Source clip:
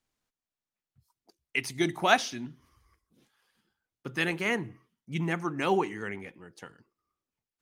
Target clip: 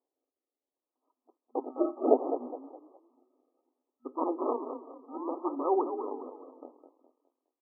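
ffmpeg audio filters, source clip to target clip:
-filter_complex "[0:a]acrusher=samples=31:mix=1:aa=0.000001:lfo=1:lforange=31:lforate=0.66,asplit=5[a][b][c][d][e];[b]adelay=207,afreqshift=31,volume=-10dB[f];[c]adelay=414,afreqshift=62,volume=-19.1dB[g];[d]adelay=621,afreqshift=93,volume=-28.2dB[h];[e]adelay=828,afreqshift=124,volume=-37.4dB[i];[a][f][g][h][i]amix=inputs=5:normalize=0,afftfilt=real='re*between(b*sr/4096,240,1300)':imag='im*between(b*sr/4096,240,1300)':win_size=4096:overlap=0.75"

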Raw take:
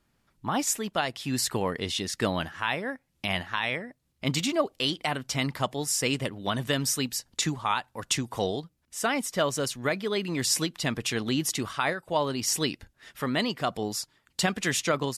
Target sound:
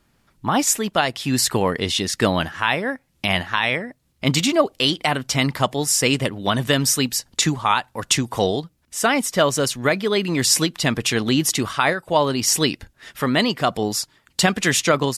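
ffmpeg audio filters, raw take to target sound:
-af "volume=8.5dB"

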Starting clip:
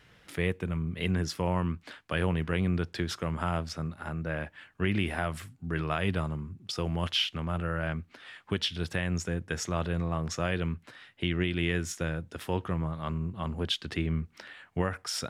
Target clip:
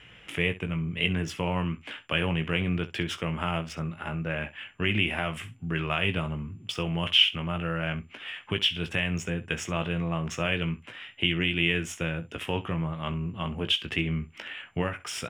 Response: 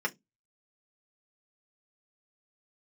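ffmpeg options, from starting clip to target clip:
-filter_complex "[0:a]aexciter=amount=2.2:drive=3.4:freq=2.3k,asplit=2[a][b];[b]acompressor=threshold=-38dB:ratio=6,volume=-0.5dB[c];[a][c]amix=inputs=2:normalize=0,aeval=exprs='val(0)+0.00112*sin(2*PI*7200*n/s)':c=same,adynamicsmooth=sensitivity=6:basefreq=6.3k,highshelf=f=3.6k:t=q:w=3:g=-6,aecho=1:1:18|66:0.398|0.15,volume=-2dB"

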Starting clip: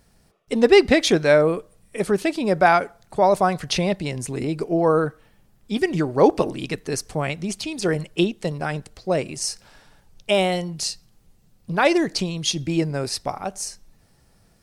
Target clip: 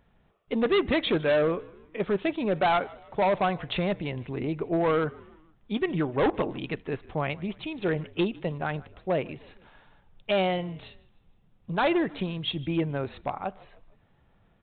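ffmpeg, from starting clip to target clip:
-filter_complex "[0:a]equalizer=f=1k:w=1.8:g=3.5,aresample=8000,asoftclip=type=hard:threshold=-14.5dB,aresample=44100,asplit=4[a][b][c][d];[b]adelay=154,afreqshift=-51,volume=-22.5dB[e];[c]adelay=308,afreqshift=-102,volume=-28.9dB[f];[d]adelay=462,afreqshift=-153,volume=-35.3dB[g];[a][e][f][g]amix=inputs=4:normalize=0,volume=-5dB"

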